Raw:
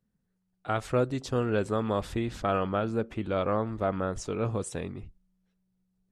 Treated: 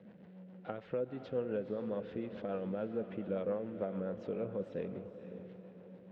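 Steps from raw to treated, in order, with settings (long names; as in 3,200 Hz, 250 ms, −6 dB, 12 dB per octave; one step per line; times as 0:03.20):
converter with a step at zero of −43.5 dBFS
downward compressor 4 to 1, threshold −30 dBFS, peak gain reduction 8.5 dB
loudspeaker in its box 170–2,900 Hz, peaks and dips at 190 Hz +8 dB, 510 Hz +9 dB, 1,200 Hz −7 dB, 2,300 Hz −3 dB
rotating-speaker cabinet horn 7 Hz
feedback delay with all-pass diffusion 501 ms, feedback 41%, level −10 dB
level −6 dB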